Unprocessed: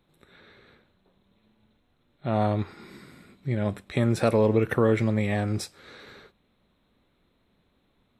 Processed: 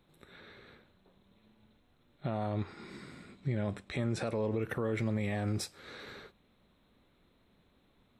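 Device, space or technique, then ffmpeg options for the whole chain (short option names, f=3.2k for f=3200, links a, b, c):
stacked limiters: -filter_complex "[0:a]alimiter=limit=-13.5dB:level=0:latency=1:release=324,alimiter=limit=-19.5dB:level=0:latency=1:release=48,alimiter=limit=-23.5dB:level=0:latency=1:release=493,asettb=1/sr,asplit=3[a][b][c];[a]atrim=end=2.494[d];[b]atrim=start=2.49:end=4.52,asetpts=PTS-STARTPTS,afade=t=in:d=0.004:c=qsin,afade=t=out:st=2.026:d=0.004:c=qsin,lowpass=f=9.2k:w=0.5412,lowpass=f=9.2k:w=1.3066[e];[c]atrim=start=4.516[f];[d][e]acrossfade=d=0.004:c1=hsin:c2=qsin[g];[g][f]acrossfade=d=0.004:c1=qsin:c2=hsin"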